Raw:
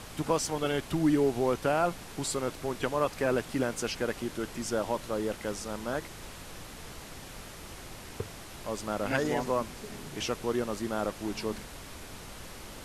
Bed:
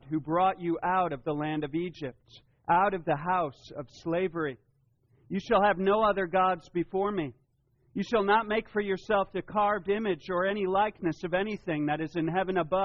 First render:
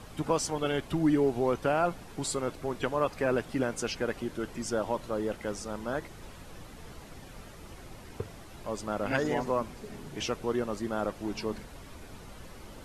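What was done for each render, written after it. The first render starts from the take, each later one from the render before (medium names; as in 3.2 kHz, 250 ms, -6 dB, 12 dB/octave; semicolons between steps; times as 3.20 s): noise reduction 8 dB, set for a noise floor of -46 dBFS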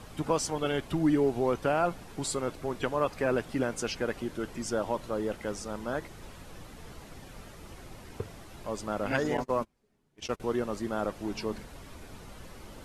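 9.37–10.40 s: gate -34 dBFS, range -30 dB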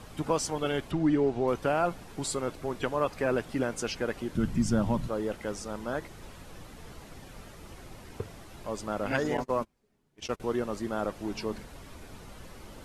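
0.91–1.48 s: distance through air 75 m; 4.35–5.08 s: resonant low shelf 280 Hz +12.5 dB, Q 1.5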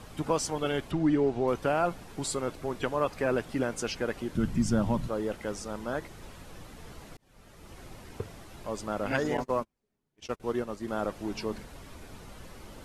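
7.17–7.83 s: fade in linear; 9.60–10.88 s: upward expansion, over -45 dBFS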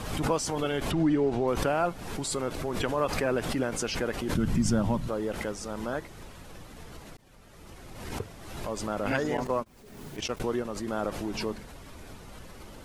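swell ahead of each attack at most 46 dB/s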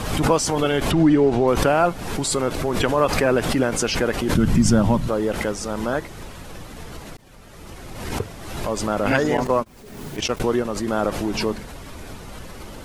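trim +9 dB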